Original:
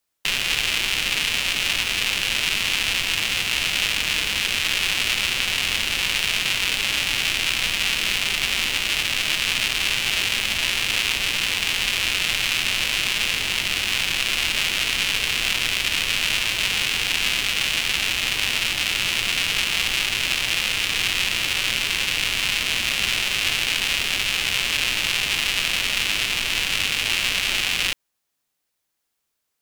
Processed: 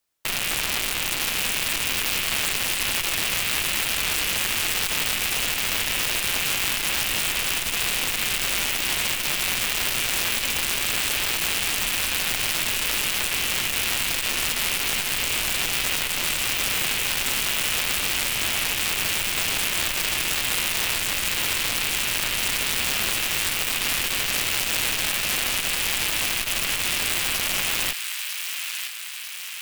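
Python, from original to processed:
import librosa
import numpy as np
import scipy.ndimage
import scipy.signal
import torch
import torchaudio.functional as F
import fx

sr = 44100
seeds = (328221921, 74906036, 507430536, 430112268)

y = (np.mod(10.0 ** (12.5 / 20.0) * x + 1.0, 2.0) - 1.0) / 10.0 ** (12.5 / 20.0)
y = fx.echo_wet_highpass(y, sr, ms=946, feedback_pct=59, hz=1500.0, wet_db=-6.5)
y = fx.transformer_sat(y, sr, knee_hz=280.0)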